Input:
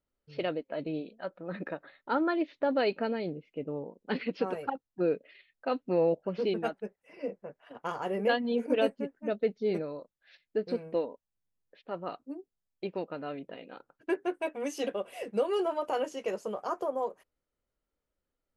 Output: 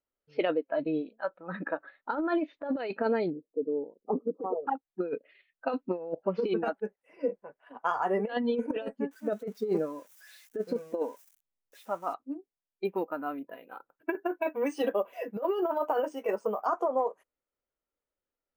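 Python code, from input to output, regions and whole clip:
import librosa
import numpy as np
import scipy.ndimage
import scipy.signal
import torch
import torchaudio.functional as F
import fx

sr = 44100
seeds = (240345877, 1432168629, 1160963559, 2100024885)

y = fx.chain(x, sr, fx.envelope_sharpen(power=1.5),
    fx.brickwall_lowpass(high_hz=1300.0), at=(3.3, 4.67))
y = fx.chain(y, sr, fx.crossing_spikes(level_db=-36.0),
    fx.high_shelf(hz=3000.0, db=-8.0), at=(9.11, 12.14))
y = fx.chain(y, sr, fx.high_shelf(hz=3800.0, db=-2.5),
    fx.resample_bad(factor=3, down='filtered', up='hold'), at=(12.85, 16.66))
y = fx.noise_reduce_blind(y, sr, reduce_db=11)
y = fx.bass_treble(y, sr, bass_db=-9, treble_db=-13)
y = fx.over_compress(y, sr, threshold_db=-32.0, ratio=-0.5)
y = y * 10.0 ** (5.0 / 20.0)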